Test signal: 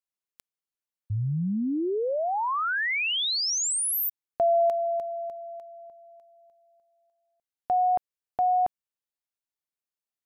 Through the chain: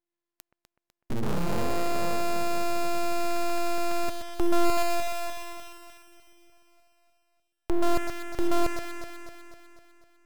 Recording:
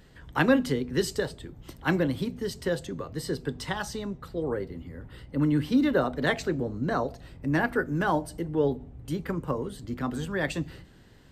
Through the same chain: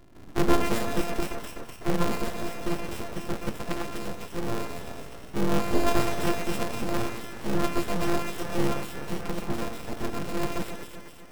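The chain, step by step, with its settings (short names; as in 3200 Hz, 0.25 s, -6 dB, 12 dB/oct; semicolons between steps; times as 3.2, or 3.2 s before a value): sample sorter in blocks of 128 samples; echo with dull and thin repeats by turns 0.125 s, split 1700 Hz, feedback 74%, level -8 dB; full-wave rectifier; gain +2.5 dB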